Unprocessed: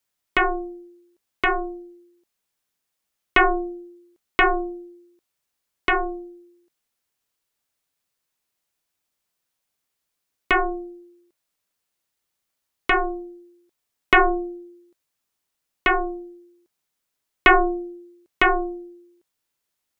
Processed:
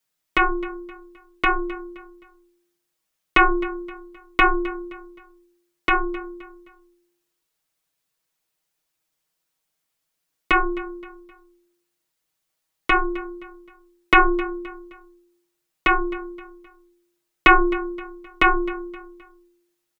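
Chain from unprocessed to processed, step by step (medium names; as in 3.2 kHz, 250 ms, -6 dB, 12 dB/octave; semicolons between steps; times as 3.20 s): comb 6.3 ms, depth 86%; on a send: feedback delay 261 ms, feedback 38%, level -18 dB; on the sum: trim -1 dB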